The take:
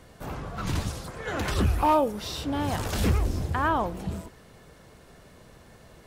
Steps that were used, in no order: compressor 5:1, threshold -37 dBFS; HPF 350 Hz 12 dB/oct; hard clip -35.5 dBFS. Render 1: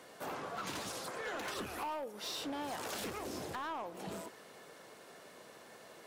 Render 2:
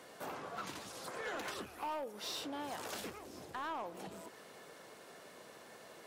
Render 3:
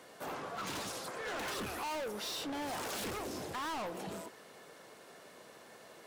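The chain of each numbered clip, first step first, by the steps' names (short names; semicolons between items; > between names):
HPF > compressor > hard clip; compressor > HPF > hard clip; HPF > hard clip > compressor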